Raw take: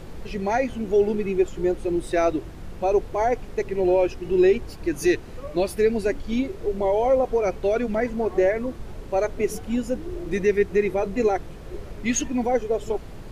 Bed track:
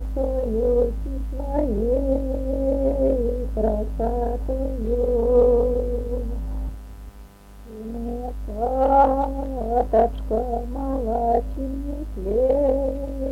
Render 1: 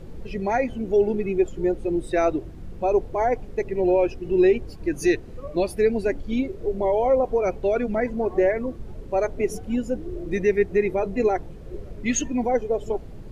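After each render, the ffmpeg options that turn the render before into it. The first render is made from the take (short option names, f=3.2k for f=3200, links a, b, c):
-af "afftdn=nr=9:nf=-39"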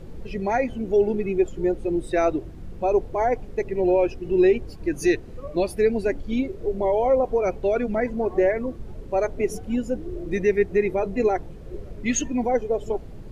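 -af anull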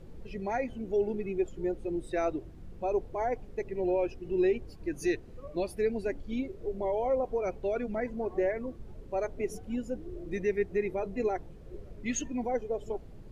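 -af "volume=-9dB"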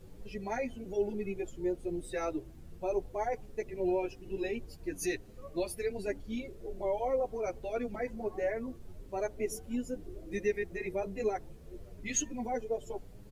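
-filter_complex "[0:a]crystalizer=i=2:c=0,asplit=2[a][b];[b]adelay=8,afreqshift=1[c];[a][c]amix=inputs=2:normalize=1"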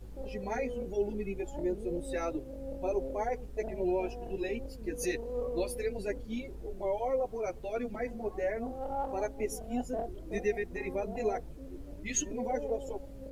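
-filter_complex "[1:a]volume=-19.5dB[a];[0:a][a]amix=inputs=2:normalize=0"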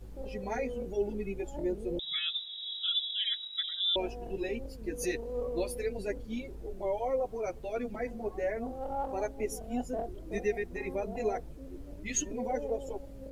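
-filter_complex "[0:a]asettb=1/sr,asplit=3[a][b][c];[a]atrim=end=1.994[d];[b]atrim=start=1.99:end=3.96,asetpts=PTS-STARTPTS,afade=t=in:d=0.004:c=qsin,afade=t=out:st=1.966:d=0.004:c=qsin,lowpass=f=3.3k:t=q:w=0.5098,lowpass=f=3.3k:t=q:w=0.6013,lowpass=f=3.3k:t=q:w=0.9,lowpass=f=3.3k:t=q:w=2.563,afreqshift=-3900[e];[c]atrim=start=3.956[f];[d][e]acrossfade=d=0.004:c1=hsin:c2=qsin[g];[g][f]acrossfade=d=0.004:c1=qsin:c2=hsin"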